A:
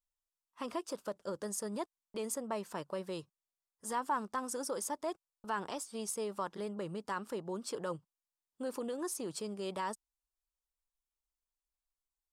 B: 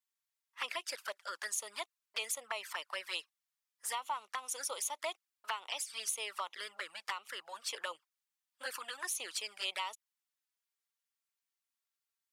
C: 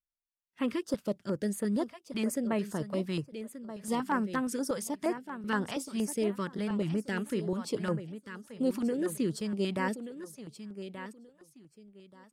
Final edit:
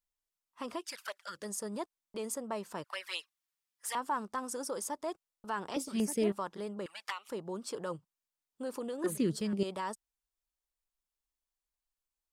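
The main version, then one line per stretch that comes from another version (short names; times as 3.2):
A
0.86–1.38 from B, crossfade 0.24 s
2.84–3.95 from B
5.74–6.32 from C
6.86–7.29 from B
9.04–9.63 from C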